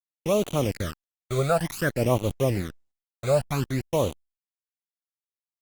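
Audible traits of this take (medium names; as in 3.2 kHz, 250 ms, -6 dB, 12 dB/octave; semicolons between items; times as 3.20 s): a quantiser's noise floor 6-bit, dither none; phasing stages 12, 0.55 Hz, lowest notch 290–1700 Hz; Opus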